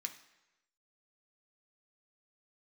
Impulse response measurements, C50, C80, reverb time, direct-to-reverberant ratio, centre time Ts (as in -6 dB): 11.5 dB, 14.0 dB, 1.0 s, 4.0 dB, 11 ms